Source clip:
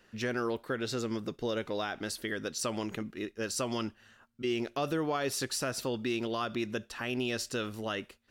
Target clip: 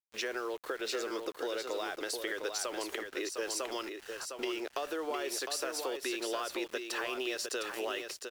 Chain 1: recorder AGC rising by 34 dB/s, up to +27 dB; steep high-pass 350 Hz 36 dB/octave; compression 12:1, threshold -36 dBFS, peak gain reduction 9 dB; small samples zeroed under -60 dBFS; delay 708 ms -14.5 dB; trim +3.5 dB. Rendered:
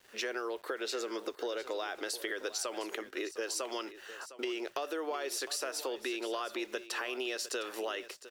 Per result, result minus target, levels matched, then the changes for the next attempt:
small samples zeroed: distortion -12 dB; echo-to-direct -8.5 dB
change: small samples zeroed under -50.5 dBFS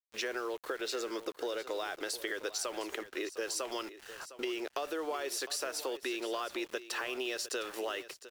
echo-to-direct -8.5 dB
change: delay 708 ms -6 dB

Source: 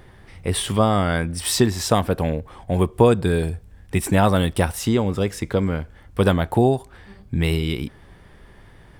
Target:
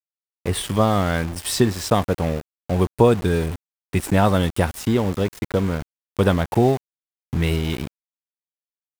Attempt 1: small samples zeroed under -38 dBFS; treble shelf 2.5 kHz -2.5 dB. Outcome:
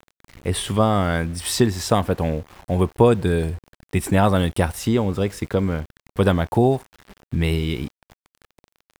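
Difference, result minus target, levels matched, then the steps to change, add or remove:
small samples zeroed: distortion -10 dB
change: small samples zeroed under -27.5 dBFS

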